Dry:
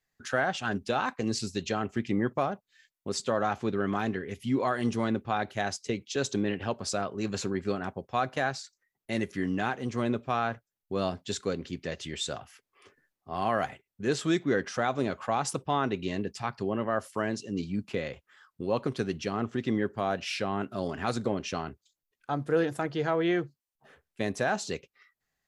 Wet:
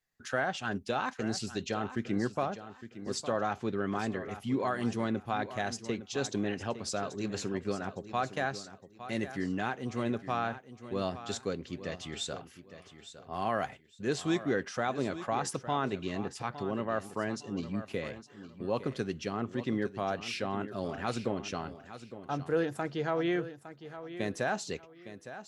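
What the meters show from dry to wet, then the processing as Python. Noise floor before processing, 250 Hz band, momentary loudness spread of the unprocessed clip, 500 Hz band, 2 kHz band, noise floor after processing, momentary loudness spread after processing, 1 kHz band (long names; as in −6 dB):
below −85 dBFS, −3.5 dB, 7 LU, −3.5 dB, −3.5 dB, −56 dBFS, 12 LU, −3.5 dB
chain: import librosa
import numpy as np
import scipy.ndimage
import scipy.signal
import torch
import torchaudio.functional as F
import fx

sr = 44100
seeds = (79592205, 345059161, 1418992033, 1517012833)

y = fx.echo_feedback(x, sr, ms=860, feedback_pct=26, wet_db=-13.0)
y = F.gain(torch.from_numpy(y), -3.5).numpy()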